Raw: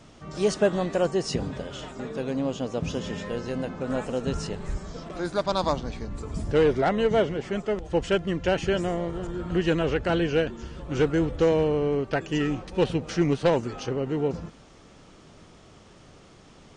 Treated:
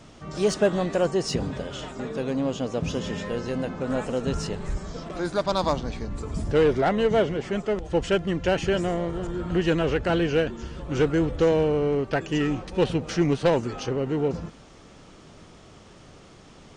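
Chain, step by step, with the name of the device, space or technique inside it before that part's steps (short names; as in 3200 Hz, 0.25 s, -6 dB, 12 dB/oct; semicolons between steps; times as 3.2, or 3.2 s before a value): parallel distortion (in parallel at -10 dB: hard clip -28.5 dBFS, distortion -5 dB)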